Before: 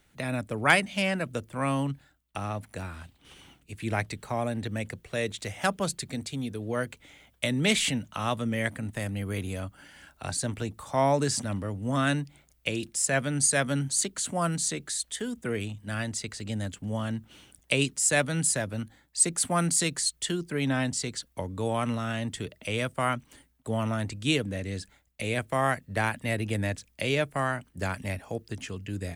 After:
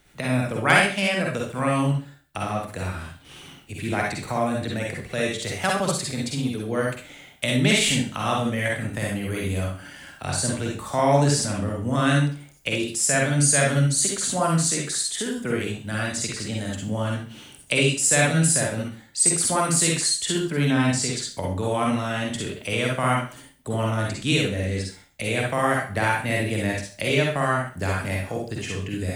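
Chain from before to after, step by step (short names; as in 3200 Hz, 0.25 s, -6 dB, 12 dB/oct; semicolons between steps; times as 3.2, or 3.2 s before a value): in parallel at -2.5 dB: compressor, threshold -35 dBFS, peak gain reduction 19 dB; on the sum: reverb RT60 0.40 s, pre-delay 43 ms, DRR -2 dB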